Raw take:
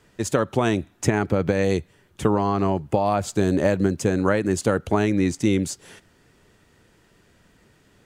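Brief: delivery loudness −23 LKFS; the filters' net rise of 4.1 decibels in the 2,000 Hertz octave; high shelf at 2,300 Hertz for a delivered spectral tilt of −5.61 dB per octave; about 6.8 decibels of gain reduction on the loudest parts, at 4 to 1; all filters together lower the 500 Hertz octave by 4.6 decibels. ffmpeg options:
ffmpeg -i in.wav -af "equalizer=frequency=500:width_type=o:gain=-6,equalizer=frequency=2000:width_type=o:gain=7.5,highshelf=frequency=2300:gain=-4,acompressor=threshold=-24dB:ratio=4,volume=6.5dB" out.wav

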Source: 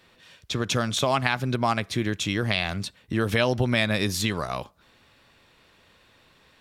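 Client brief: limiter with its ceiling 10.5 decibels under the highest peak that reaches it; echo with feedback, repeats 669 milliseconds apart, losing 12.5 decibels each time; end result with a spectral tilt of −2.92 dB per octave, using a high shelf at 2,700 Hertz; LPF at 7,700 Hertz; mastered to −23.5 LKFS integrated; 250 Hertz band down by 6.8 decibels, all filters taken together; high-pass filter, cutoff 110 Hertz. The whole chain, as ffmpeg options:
ffmpeg -i in.wav -af "highpass=110,lowpass=7700,equalizer=frequency=250:width_type=o:gain=-8.5,highshelf=frequency=2700:gain=6.5,alimiter=limit=-11.5dB:level=0:latency=1,aecho=1:1:669|1338|2007:0.237|0.0569|0.0137,volume=3dB" out.wav

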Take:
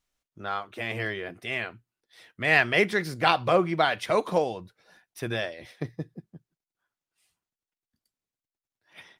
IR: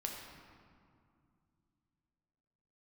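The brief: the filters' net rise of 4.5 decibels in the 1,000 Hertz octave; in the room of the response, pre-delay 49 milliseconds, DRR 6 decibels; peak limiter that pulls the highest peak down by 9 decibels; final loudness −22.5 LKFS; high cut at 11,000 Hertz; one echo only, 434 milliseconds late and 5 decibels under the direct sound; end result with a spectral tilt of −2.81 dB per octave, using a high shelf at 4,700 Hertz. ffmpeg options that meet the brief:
-filter_complex "[0:a]lowpass=11000,equalizer=frequency=1000:width_type=o:gain=6,highshelf=frequency=4700:gain=3.5,alimiter=limit=-12dB:level=0:latency=1,aecho=1:1:434:0.562,asplit=2[link_01][link_02];[1:a]atrim=start_sample=2205,adelay=49[link_03];[link_02][link_03]afir=irnorm=-1:irlink=0,volume=-6dB[link_04];[link_01][link_04]amix=inputs=2:normalize=0,volume=3.5dB"

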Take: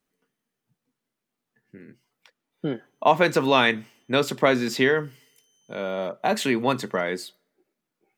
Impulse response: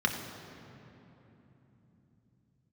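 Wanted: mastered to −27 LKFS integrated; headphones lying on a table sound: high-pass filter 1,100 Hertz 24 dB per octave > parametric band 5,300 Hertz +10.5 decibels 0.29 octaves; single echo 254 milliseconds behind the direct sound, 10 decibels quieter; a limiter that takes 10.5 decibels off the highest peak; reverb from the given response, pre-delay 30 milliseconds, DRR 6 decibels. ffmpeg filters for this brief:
-filter_complex "[0:a]alimiter=limit=-15dB:level=0:latency=1,aecho=1:1:254:0.316,asplit=2[link_01][link_02];[1:a]atrim=start_sample=2205,adelay=30[link_03];[link_02][link_03]afir=irnorm=-1:irlink=0,volume=-16dB[link_04];[link_01][link_04]amix=inputs=2:normalize=0,highpass=frequency=1100:width=0.5412,highpass=frequency=1100:width=1.3066,equalizer=frequency=5300:width_type=o:width=0.29:gain=10.5,volume=3.5dB"

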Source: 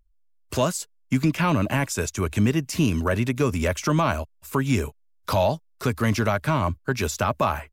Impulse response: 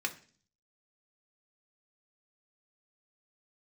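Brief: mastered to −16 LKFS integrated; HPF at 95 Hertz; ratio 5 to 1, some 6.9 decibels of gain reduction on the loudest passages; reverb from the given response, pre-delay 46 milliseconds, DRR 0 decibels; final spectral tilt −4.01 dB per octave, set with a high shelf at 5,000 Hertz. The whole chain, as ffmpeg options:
-filter_complex "[0:a]highpass=95,highshelf=frequency=5000:gain=8.5,acompressor=threshold=-24dB:ratio=5,asplit=2[link_01][link_02];[1:a]atrim=start_sample=2205,adelay=46[link_03];[link_02][link_03]afir=irnorm=-1:irlink=0,volume=-4.5dB[link_04];[link_01][link_04]amix=inputs=2:normalize=0,volume=11dB"

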